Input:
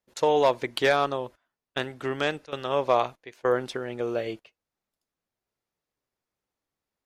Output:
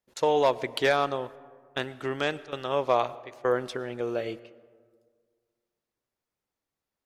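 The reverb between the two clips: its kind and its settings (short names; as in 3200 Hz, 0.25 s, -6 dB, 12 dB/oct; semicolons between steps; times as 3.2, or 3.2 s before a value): digital reverb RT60 1.8 s, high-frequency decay 0.4×, pre-delay 70 ms, DRR 19 dB; gain -1.5 dB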